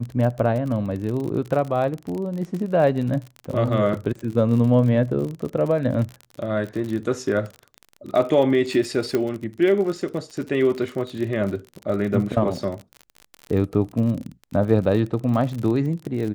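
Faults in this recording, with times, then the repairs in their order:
crackle 40 per s -28 dBFS
9.15 s: pop -10 dBFS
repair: de-click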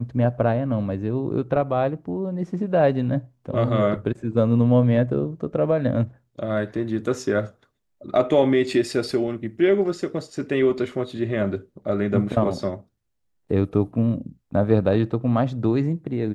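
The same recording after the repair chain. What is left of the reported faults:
nothing left

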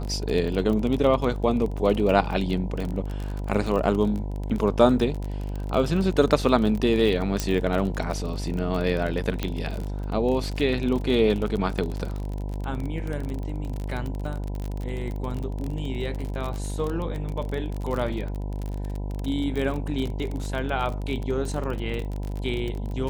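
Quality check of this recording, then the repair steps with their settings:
buzz 50 Hz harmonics 20 -30 dBFS
crackle 33 per s -28 dBFS
7.40 s: pop -10 dBFS
9.43 s: pop -12 dBFS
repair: de-click; de-hum 50 Hz, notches 20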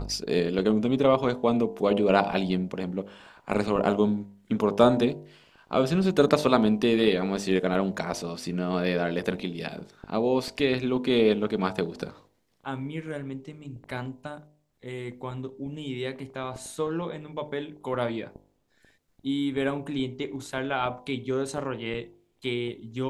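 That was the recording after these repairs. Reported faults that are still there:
nothing left

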